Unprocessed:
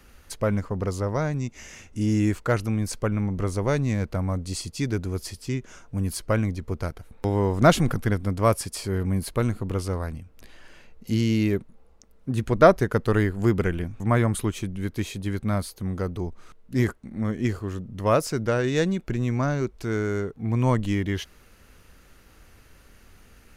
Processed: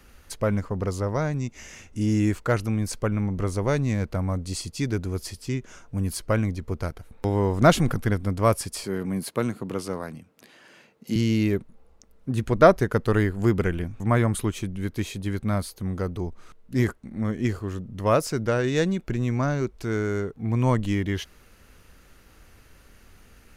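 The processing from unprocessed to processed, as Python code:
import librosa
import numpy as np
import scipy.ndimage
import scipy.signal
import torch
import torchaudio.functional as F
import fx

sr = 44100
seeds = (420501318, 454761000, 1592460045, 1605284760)

y = fx.highpass(x, sr, hz=140.0, slope=24, at=(8.84, 11.16))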